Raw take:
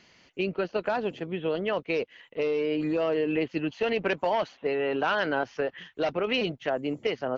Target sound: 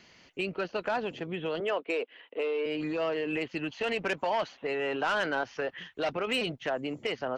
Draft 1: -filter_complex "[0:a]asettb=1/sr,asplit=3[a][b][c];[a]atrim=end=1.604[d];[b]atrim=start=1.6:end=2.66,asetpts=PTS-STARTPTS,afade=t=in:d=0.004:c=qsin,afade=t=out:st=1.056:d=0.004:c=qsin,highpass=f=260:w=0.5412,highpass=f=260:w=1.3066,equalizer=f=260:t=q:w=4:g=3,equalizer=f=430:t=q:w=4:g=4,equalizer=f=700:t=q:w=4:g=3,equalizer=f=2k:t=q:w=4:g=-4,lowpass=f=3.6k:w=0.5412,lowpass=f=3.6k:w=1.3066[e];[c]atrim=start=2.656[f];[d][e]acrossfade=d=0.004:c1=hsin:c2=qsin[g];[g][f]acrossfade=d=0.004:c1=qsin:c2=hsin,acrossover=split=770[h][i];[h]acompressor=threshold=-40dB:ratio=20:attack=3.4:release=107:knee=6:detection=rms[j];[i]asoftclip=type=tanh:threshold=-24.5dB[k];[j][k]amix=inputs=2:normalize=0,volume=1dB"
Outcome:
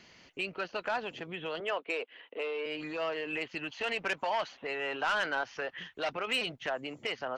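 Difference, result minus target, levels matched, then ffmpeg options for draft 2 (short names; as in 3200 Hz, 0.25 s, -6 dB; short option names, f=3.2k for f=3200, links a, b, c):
compressor: peak gain reduction +9 dB
-filter_complex "[0:a]asettb=1/sr,asplit=3[a][b][c];[a]atrim=end=1.604[d];[b]atrim=start=1.6:end=2.66,asetpts=PTS-STARTPTS,afade=t=in:d=0.004:c=qsin,afade=t=out:st=1.056:d=0.004:c=qsin,highpass=f=260:w=0.5412,highpass=f=260:w=1.3066,equalizer=f=260:t=q:w=4:g=3,equalizer=f=430:t=q:w=4:g=4,equalizer=f=700:t=q:w=4:g=3,equalizer=f=2k:t=q:w=4:g=-4,lowpass=f=3.6k:w=0.5412,lowpass=f=3.6k:w=1.3066[e];[c]atrim=start=2.656[f];[d][e]acrossfade=d=0.004:c1=hsin:c2=qsin[g];[g][f]acrossfade=d=0.004:c1=qsin:c2=hsin,acrossover=split=770[h][i];[h]acompressor=threshold=-30.5dB:ratio=20:attack=3.4:release=107:knee=6:detection=rms[j];[i]asoftclip=type=tanh:threshold=-24.5dB[k];[j][k]amix=inputs=2:normalize=0,volume=1dB"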